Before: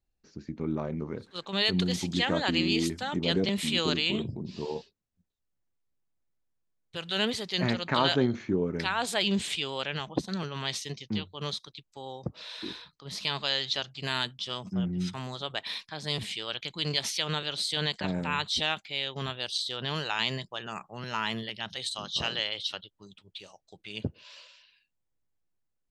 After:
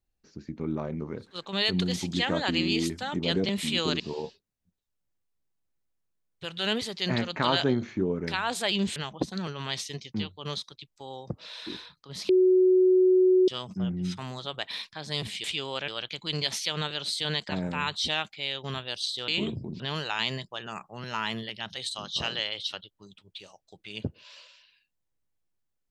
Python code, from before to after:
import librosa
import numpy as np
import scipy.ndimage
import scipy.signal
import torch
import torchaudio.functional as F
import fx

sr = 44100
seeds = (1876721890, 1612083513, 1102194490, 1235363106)

y = fx.edit(x, sr, fx.move(start_s=4.0, length_s=0.52, to_s=19.8),
    fx.move(start_s=9.48, length_s=0.44, to_s=16.4),
    fx.bleep(start_s=13.25, length_s=1.19, hz=370.0, db=-16.5), tone=tone)